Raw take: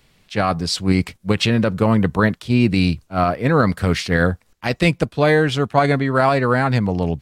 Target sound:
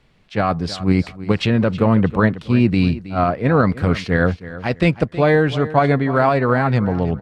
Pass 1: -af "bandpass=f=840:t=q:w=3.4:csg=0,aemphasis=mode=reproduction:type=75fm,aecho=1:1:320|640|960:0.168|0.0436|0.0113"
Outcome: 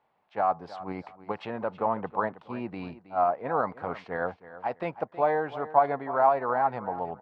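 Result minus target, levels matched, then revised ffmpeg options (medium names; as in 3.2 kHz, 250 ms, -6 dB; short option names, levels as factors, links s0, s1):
1 kHz band +7.5 dB
-af "aemphasis=mode=reproduction:type=75fm,aecho=1:1:320|640|960:0.168|0.0436|0.0113"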